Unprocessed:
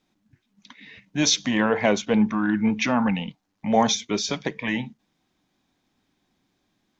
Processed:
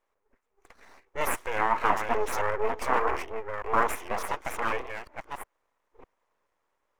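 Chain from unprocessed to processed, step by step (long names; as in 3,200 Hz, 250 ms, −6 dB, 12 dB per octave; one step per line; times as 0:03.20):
delay that plays each chunk backwards 604 ms, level −5 dB
full-wave rectification
octave-band graphic EQ 125/500/1,000/2,000/4,000 Hz −10/+4/+11/+5/−9 dB
level −8.5 dB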